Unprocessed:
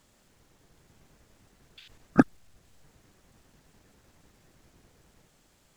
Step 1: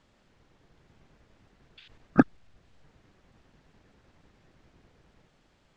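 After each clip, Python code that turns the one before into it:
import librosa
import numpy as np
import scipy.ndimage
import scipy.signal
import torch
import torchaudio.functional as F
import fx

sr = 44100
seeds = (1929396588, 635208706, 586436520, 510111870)

y = scipy.signal.sosfilt(scipy.signal.butter(2, 3900.0, 'lowpass', fs=sr, output='sos'), x)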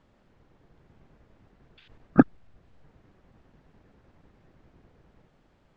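y = fx.high_shelf(x, sr, hz=2200.0, db=-11.5)
y = y * 10.0 ** (3.0 / 20.0)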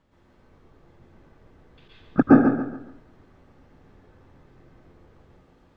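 y = fx.echo_feedback(x, sr, ms=140, feedback_pct=35, wet_db=-7.5)
y = fx.rev_plate(y, sr, seeds[0], rt60_s=0.55, hf_ratio=0.65, predelay_ms=105, drr_db=-7.0)
y = y * 10.0 ** (-3.0 / 20.0)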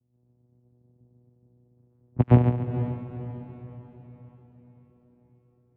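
y = fx.vocoder(x, sr, bands=4, carrier='saw', carrier_hz=122.0)
y = fx.env_lowpass(y, sr, base_hz=400.0, full_db=-18.5)
y = fx.echo_diffused(y, sr, ms=475, feedback_pct=46, wet_db=-10.5)
y = y * 10.0 ** (-2.5 / 20.0)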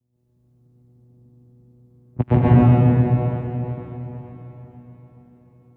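y = fx.rev_plate(x, sr, seeds[1], rt60_s=2.6, hf_ratio=0.85, predelay_ms=110, drr_db=-9.0)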